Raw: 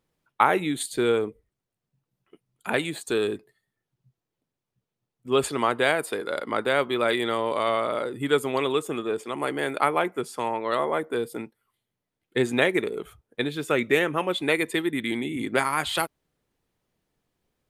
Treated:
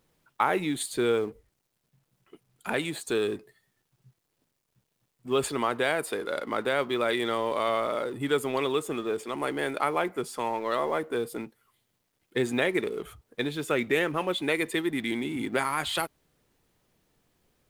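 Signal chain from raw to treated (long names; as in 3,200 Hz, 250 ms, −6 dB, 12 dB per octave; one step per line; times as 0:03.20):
mu-law and A-law mismatch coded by mu
in parallel at −1 dB: brickwall limiter −13.5 dBFS, peak gain reduction 10 dB
on the sum: level −8.5 dB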